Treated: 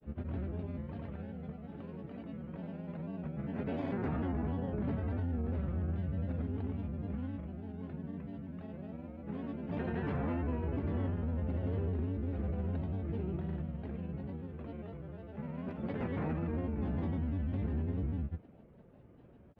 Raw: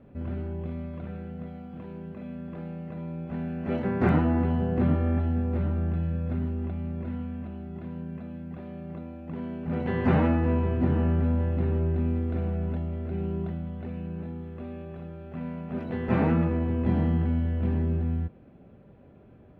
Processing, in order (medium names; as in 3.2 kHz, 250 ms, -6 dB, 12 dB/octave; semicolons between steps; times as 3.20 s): granulator, pitch spread up and down by 3 st; peak limiter -23.5 dBFS, peak gain reduction 12 dB; trim -4 dB